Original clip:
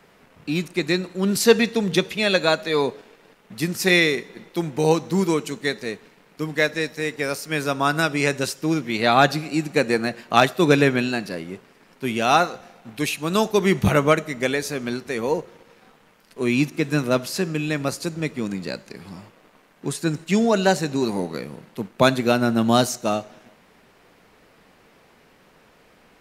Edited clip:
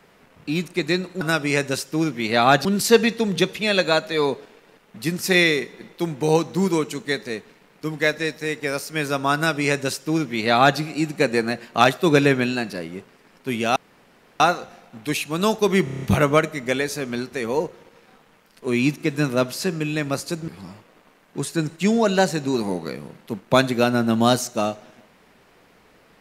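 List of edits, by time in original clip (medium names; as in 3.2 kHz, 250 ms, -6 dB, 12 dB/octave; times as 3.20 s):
7.91–9.35 s: copy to 1.21 s
12.32 s: insert room tone 0.64 s
13.76 s: stutter 0.03 s, 7 plays
18.22–18.96 s: delete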